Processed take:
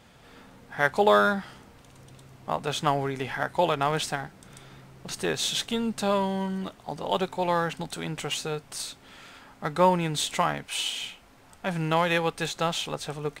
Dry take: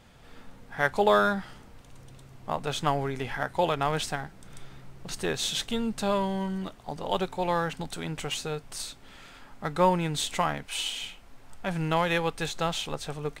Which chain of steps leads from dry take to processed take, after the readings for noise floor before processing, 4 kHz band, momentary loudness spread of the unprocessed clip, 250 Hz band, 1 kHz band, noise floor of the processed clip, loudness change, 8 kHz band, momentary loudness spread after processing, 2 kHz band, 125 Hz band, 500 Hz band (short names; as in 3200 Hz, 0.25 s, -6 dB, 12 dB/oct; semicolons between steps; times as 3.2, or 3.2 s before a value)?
-52 dBFS, +2.0 dB, 13 LU, +1.0 dB, +2.0 dB, -54 dBFS, +2.0 dB, +2.0 dB, 14 LU, +2.0 dB, +0.5 dB, +2.0 dB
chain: HPF 100 Hz 6 dB/oct; gain +2 dB